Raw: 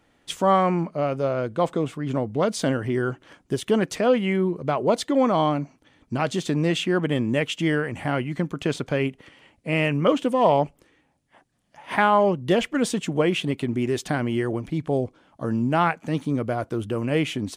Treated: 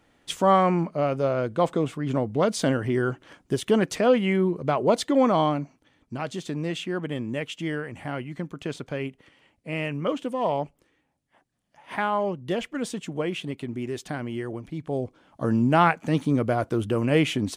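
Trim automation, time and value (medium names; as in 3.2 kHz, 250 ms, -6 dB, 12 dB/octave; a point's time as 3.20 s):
5.31 s 0 dB
6.14 s -7 dB
14.79 s -7 dB
15.44 s +2 dB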